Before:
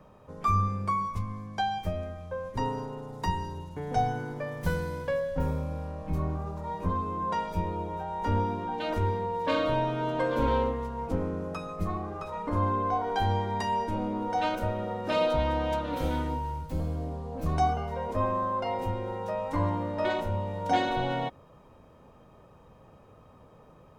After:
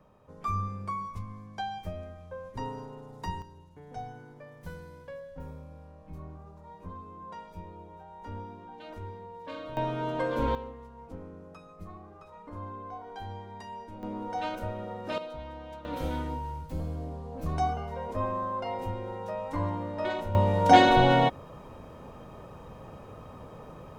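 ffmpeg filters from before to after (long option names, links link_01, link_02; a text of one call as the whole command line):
ffmpeg -i in.wav -af "asetnsamples=nb_out_samples=441:pad=0,asendcmd='3.42 volume volume -13.5dB;9.77 volume volume -2dB;10.55 volume volume -13.5dB;14.03 volume volume -5dB;15.18 volume volume -14.5dB;15.85 volume volume -3dB;20.35 volume volume 9dB',volume=-6dB" out.wav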